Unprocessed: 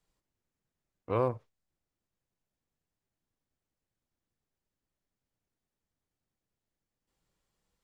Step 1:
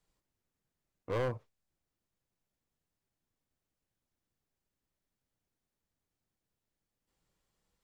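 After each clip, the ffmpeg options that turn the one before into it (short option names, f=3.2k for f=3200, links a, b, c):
-af "asoftclip=type=hard:threshold=-28.5dB"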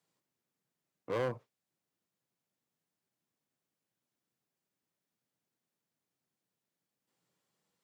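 -af "highpass=f=130:w=0.5412,highpass=f=130:w=1.3066"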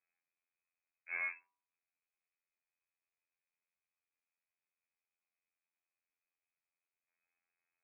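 -af "afftfilt=real='hypot(re,im)*cos(PI*b)':imag='0':win_size=2048:overlap=0.75,lowpass=f=2.3k:t=q:w=0.5098,lowpass=f=2.3k:t=q:w=0.6013,lowpass=f=2.3k:t=q:w=0.9,lowpass=f=2.3k:t=q:w=2.563,afreqshift=-2700,bandreject=f=97.79:t=h:w=4,bandreject=f=195.58:t=h:w=4,bandreject=f=293.37:t=h:w=4,bandreject=f=391.16:t=h:w=4,bandreject=f=488.95:t=h:w=4,bandreject=f=586.74:t=h:w=4,bandreject=f=684.53:t=h:w=4,bandreject=f=782.32:t=h:w=4,bandreject=f=880.11:t=h:w=4,bandreject=f=977.9:t=h:w=4,bandreject=f=1.07569k:t=h:w=4,bandreject=f=1.17348k:t=h:w=4,volume=-3dB"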